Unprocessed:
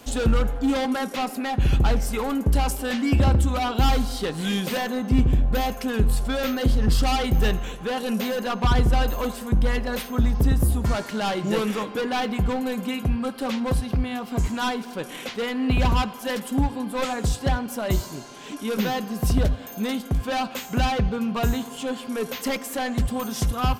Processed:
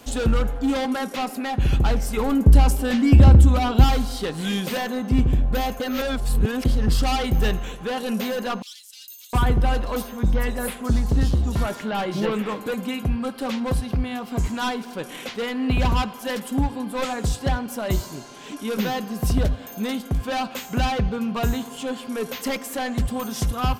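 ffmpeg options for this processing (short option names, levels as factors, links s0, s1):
-filter_complex "[0:a]asettb=1/sr,asplit=3[s0][s1][s2];[s0]atrim=end=2.174[s3];[s1]atrim=start=2.17:end=3.84,asetpts=PTS-STARTPTS,afade=t=in:d=0.004:c=qsin,afade=t=out:st=1.666:d=0.004:c=qsin,lowshelf=f=310:g=9[s4];[s2]atrim=start=3.836[s5];[s3][s4]acrossfade=d=0.004:c1=hsin:c2=qsin[s6];[s6][s5]acrossfade=d=0.004:c1=qsin:c2=hsin,asettb=1/sr,asplit=3[s7][s8][s9];[s7]atrim=end=8.624[s10];[s8]atrim=start=8.62:end=12.74,asetpts=PTS-STARTPTS,afade=t=in:d=0.004:c=qsin,afade=t=out:st=4.116:d=0.004:c=qsin,acrossover=split=3800[s11][s12];[s11]adelay=710[s13];[s13][s12]amix=inputs=2:normalize=0,atrim=end_sample=181692[s14];[s9]atrim=start=12.736[s15];[s10][s14]acrossfade=d=0.004:c1=hsin:c2=qsin[s16];[s16][s15]acrossfade=d=0.004:c1=qsin:c2=hsin,asplit=3[s17][s18][s19];[s17]atrim=end=5.802[s20];[s18]atrim=start=5.798:end=6.652,asetpts=PTS-STARTPTS,areverse[s21];[s19]atrim=start=6.648[s22];[s20][s21]acrossfade=d=0.004:c1=hsin:c2=hsin[s23];[s23][s22]acrossfade=d=0.004:c1=hsin:c2=hsin"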